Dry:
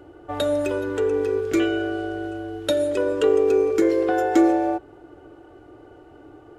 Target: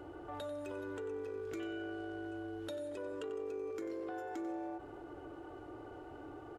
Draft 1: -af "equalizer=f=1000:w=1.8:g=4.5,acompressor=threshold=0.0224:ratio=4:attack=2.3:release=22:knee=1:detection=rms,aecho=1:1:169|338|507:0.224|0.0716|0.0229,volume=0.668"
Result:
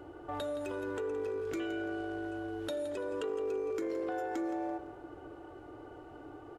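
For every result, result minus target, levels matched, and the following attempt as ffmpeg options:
echo 76 ms late; compression: peak gain reduction -6 dB
-af "equalizer=f=1000:w=1.8:g=4.5,acompressor=threshold=0.0224:ratio=4:attack=2.3:release=22:knee=1:detection=rms,aecho=1:1:93|186|279:0.224|0.0716|0.0229,volume=0.668"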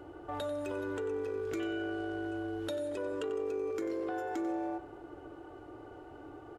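compression: peak gain reduction -6 dB
-af "equalizer=f=1000:w=1.8:g=4.5,acompressor=threshold=0.00891:ratio=4:attack=2.3:release=22:knee=1:detection=rms,aecho=1:1:93|186|279:0.224|0.0716|0.0229,volume=0.668"

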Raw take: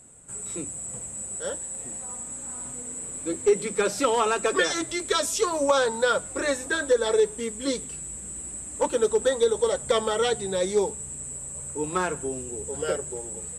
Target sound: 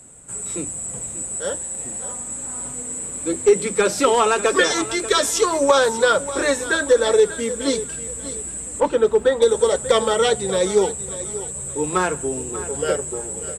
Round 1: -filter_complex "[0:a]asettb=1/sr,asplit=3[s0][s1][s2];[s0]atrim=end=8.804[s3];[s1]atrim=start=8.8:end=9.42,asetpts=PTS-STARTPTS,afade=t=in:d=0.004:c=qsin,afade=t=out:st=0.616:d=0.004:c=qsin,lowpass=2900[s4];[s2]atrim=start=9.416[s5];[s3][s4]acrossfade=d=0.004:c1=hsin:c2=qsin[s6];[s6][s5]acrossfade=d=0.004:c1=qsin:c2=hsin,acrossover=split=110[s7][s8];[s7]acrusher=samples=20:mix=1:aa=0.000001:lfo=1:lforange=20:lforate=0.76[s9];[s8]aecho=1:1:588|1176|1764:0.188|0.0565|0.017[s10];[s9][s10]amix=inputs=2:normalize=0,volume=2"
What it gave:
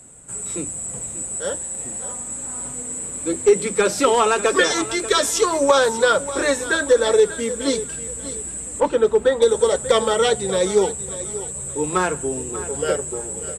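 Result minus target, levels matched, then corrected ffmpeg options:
decimation with a swept rate: distortion -8 dB
-filter_complex "[0:a]asettb=1/sr,asplit=3[s0][s1][s2];[s0]atrim=end=8.804[s3];[s1]atrim=start=8.8:end=9.42,asetpts=PTS-STARTPTS,afade=t=in:d=0.004:c=qsin,afade=t=out:st=0.616:d=0.004:c=qsin,lowpass=2900[s4];[s2]atrim=start=9.416[s5];[s3][s4]acrossfade=d=0.004:c1=hsin:c2=qsin[s6];[s6][s5]acrossfade=d=0.004:c1=qsin:c2=hsin,acrossover=split=110[s7][s8];[s7]acrusher=samples=52:mix=1:aa=0.000001:lfo=1:lforange=52:lforate=0.76[s9];[s8]aecho=1:1:588|1176|1764:0.188|0.0565|0.017[s10];[s9][s10]amix=inputs=2:normalize=0,volume=2"

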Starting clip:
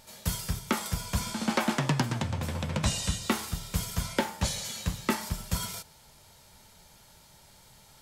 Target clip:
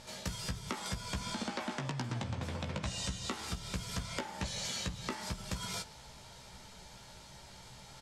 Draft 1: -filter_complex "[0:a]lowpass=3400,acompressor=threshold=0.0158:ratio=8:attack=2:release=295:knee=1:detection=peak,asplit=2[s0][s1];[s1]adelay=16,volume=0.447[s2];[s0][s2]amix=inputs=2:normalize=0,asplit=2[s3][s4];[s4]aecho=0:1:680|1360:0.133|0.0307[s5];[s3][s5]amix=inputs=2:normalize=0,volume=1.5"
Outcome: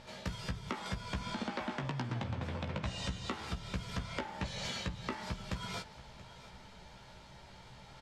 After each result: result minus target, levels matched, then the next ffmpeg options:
8 kHz band -8.0 dB; echo-to-direct +11.5 dB
-filter_complex "[0:a]lowpass=7000,acompressor=threshold=0.0158:ratio=8:attack=2:release=295:knee=1:detection=peak,asplit=2[s0][s1];[s1]adelay=16,volume=0.447[s2];[s0][s2]amix=inputs=2:normalize=0,asplit=2[s3][s4];[s4]aecho=0:1:680|1360:0.133|0.0307[s5];[s3][s5]amix=inputs=2:normalize=0,volume=1.5"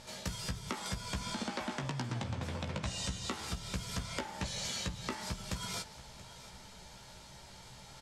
echo-to-direct +11.5 dB
-filter_complex "[0:a]lowpass=7000,acompressor=threshold=0.0158:ratio=8:attack=2:release=295:knee=1:detection=peak,asplit=2[s0][s1];[s1]adelay=16,volume=0.447[s2];[s0][s2]amix=inputs=2:normalize=0,asplit=2[s3][s4];[s4]aecho=0:1:680:0.0355[s5];[s3][s5]amix=inputs=2:normalize=0,volume=1.5"

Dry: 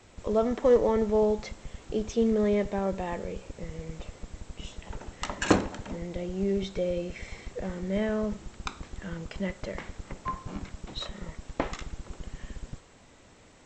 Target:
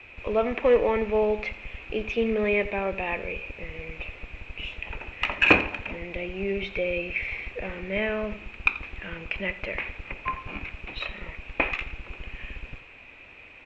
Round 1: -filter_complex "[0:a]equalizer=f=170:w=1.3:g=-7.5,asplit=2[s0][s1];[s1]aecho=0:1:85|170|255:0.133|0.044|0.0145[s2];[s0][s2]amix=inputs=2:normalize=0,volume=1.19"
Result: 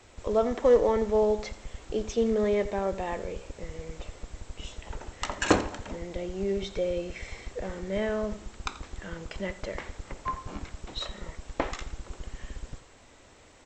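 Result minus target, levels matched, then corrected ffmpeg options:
2 kHz band -9.5 dB
-filter_complex "[0:a]lowpass=f=2500:t=q:w=15,equalizer=f=170:w=1.3:g=-7.5,asplit=2[s0][s1];[s1]aecho=0:1:85|170|255:0.133|0.044|0.0145[s2];[s0][s2]amix=inputs=2:normalize=0,volume=1.19"

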